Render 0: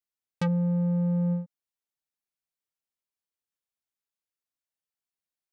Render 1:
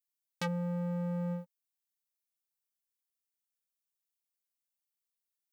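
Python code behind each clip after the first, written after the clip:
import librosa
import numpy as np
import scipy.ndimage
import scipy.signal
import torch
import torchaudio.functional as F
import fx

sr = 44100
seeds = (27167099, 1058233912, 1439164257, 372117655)

y = fx.tilt_eq(x, sr, slope=4.0)
y = fx.leveller(y, sr, passes=2)
y = F.gain(torch.from_numpy(y), -7.0).numpy()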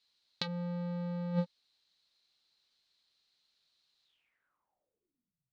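y = fx.over_compress(x, sr, threshold_db=-39.0, ratio=-0.5)
y = fx.filter_sweep_lowpass(y, sr, from_hz=4100.0, to_hz=130.0, start_s=4.04, end_s=5.47, q=7.6)
y = F.gain(torch.from_numpy(y), 6.0).numpy()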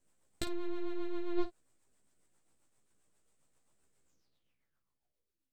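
y = np.abs(x)
y = fx.rotary(y, sr, hz=7.5)
y = fx.room_early_taps(y, sr, ms=(15, 53), db=(-4.5, -13.0))
y = F.gain(torch.from_numpy(y), 2.5).numpy()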